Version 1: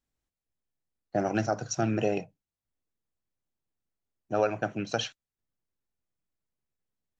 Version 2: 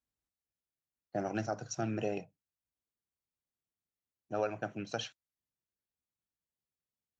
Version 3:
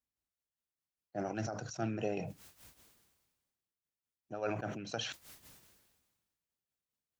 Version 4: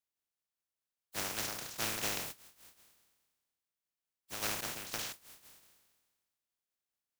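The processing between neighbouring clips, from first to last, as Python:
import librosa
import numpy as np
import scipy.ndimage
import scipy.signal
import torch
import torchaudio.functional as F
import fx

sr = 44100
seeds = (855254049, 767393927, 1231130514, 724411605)

y1 = scipy.signal.sosfilt(scipy.signal.butter(2, 43.0, 'highpass', fs=sr, output='sos'), x)
y1 = y1 * 10.0 ** (-7.5 / 20.0)
y2 = fx.rider(y1, sr, range_db=10, speed_s=2.0)
y2 = y2 * (1.0 - 0.79 / 2.0 + 0.79 / 2.0 * np.cos(2.0 * np.pi * 4.9 * (np.arange(len(y2)) / sr)))
y2 = fx.sustainer(y2, sr, db_per_s=39.0)
y2 = y2 * 10.0 ** (1.0 / 20.0)
y3 = fx.spec_flatten(y2, sr, power=0.15)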